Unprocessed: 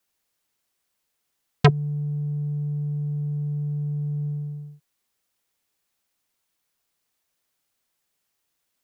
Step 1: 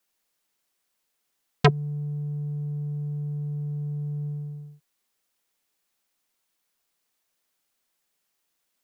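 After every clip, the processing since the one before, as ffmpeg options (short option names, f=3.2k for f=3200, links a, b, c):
-af "equalizer=f=90:w=1.8:g=-13"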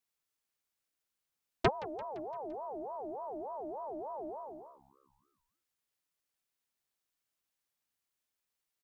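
-filter_complex "[0:a]asplit=6[a][b][c][d][e][f];[b]adelay=171,afreqshift=68,volume=-19.5dB[g];[c]adelay=342,afreqshift=136,volume=-24.1dB[h];[d]adelay=513,afreqshift=204,volume=-28.7dB[i];[e]adelay=684,afreqshift=272,volume=-33.2dB[j];[f]adelay=855,afreqshift=340,volume=-37.8dB[k];[a][g][h][i][j][k]amix=inputs=6:normalize=0,aeval=exprs='val(0)*sin(2*PI*650*n/s+650*0.3/3.4*sin(2*PI*3.4*n/s))':c=same,volume=-8dB"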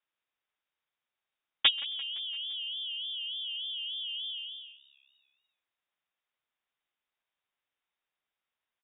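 -filter_complex "[0:a]asplit=2[a][b];[b]adelay=132,lowpass=f=1.8k:p=1,volume=-22dB,asplit=2[c][d];[d]adelay=132,lowpass=f=1.8k:p=1,volume=0.31[e];[a][c][e]amix=inputs=3:normalize=0,lowpass=f=3.2k:t=q:w=0.5098,lowpass=f=3.2k:t=q:w=0.6013,lowpass=f=3.2k:t=q:w=0.9,lowpass=f=3.2k:t=q:w=2.563,afreqshift=-3800,volume=4dB"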